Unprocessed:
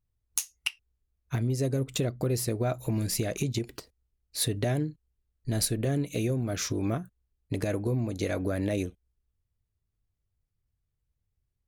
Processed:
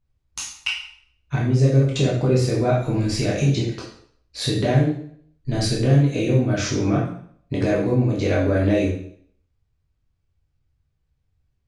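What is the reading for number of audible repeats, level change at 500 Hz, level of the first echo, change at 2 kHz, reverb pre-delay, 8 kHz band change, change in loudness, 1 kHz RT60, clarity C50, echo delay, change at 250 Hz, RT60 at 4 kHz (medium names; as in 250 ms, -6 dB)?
no echo, +9.5 dB, no echo, +9.5 dB, 6 ms, 0.0 dB, +9.5 dB, 0.60 s, 4.0 dB, no echo, +9.5 dB, 0.55 s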